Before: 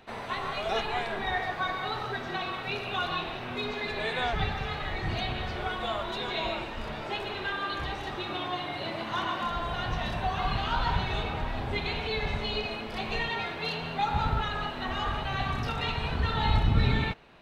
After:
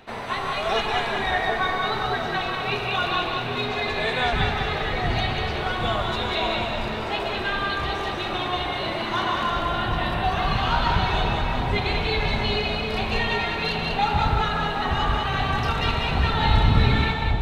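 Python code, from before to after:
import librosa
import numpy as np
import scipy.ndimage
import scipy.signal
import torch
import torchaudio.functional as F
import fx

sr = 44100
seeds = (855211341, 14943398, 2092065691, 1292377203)

p1 = fx.peak_eq(x, sr, hz=6100.0, db=-13.5, octaves=0.44, at=(9.61, 10.24))
p2 = p1 + fx.echo_split(p1, sr, split_hz=860.0, low_ms=765, high_ms=192, feedback_pct=52, wet_db=-4, dry=0)
y = p2 * librosa.db_to_amplitude(5.5)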